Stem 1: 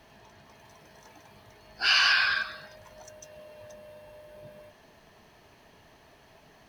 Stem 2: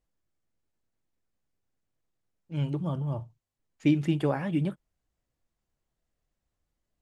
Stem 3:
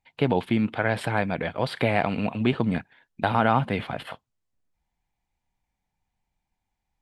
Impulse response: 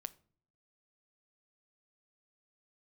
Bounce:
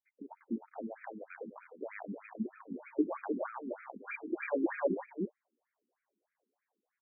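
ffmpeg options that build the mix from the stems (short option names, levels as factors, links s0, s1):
-filter_complex "[0:a]aecho=1:1:4.9:0.77,acrusher=bits=3:mix=0:aa=0.000001,asoftclip=type=tanh:threshold=0.0398,adelay=2200,volume=0.2,asplit=2[s0][s1];[s1]volume=0.596[s2];[1:a]equalizer=f=1300:w=5.9:g=-9.5,adelay=250,volume=1.33,asplit=2[s3][s4];[s4]volume=0.335[s5];[2:a]acompressor=threshold=0.0631:ratio=6,equalizer=f=200:t=o:w=0.58:g=9,volume=0.112,asplit=3[s6][s7][s8];[s7]volume=0.335[s9];[s8]apad=whole_len=320465[s10];[s3][s10]sidechaincompress=threshold=0.00398:ratio=8:attack=16:release=390[s11];[s0][s11]amix=inputs=2:normalize=0,flanger=delay=16.5:depth=6.2:speed=0.34,acompressor=threshold=0.0282:ratio=6,volume=1[s12];[s2][s5][s9]amix=inputs=3:normalize=0,aecho=0:1:306:1[s13];[s6][s12][s13]amix=inputs=3:normalize=0,dynaudnorm=f=220:g=3:m=3.16,asoftclip=type=tanh:threshold=0.224,afftfilt=real='re*between(b*sr/1024,290*pow(1800/290,0.5+0.5*sin(2*PI*3.2*pts/sr))/1.41,290*pow(1800/290,0.5+0.5*sin(2*PI*3.2*pts/sr))*1.41)':imag='im*between(b*sr/1024,290*pow(1800/290,0.5+0.5*sin(2*PI*3.2*pts/sr))/1.41,290*pow(1800/290,0.5+0.5*sin(2*PI*3.2*pts/sr))*1.41)':win_size=1024:overlap=0.75"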